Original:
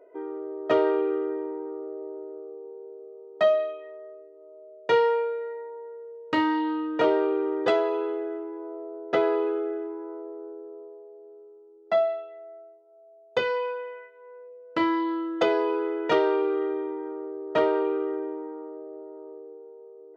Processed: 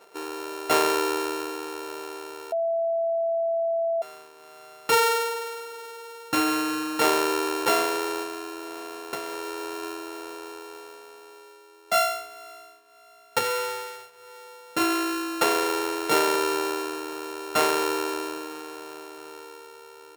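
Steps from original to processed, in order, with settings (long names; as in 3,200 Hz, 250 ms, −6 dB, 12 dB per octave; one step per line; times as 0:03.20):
samples sorted by size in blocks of 32 samples
0:02.52–0:04.02: beep over 666 Hz −22 dBFS
0:08.22–0:09.83: downward compressor 16 to 1, threshold −30 dBFS, peak gain reduction 12.5 dB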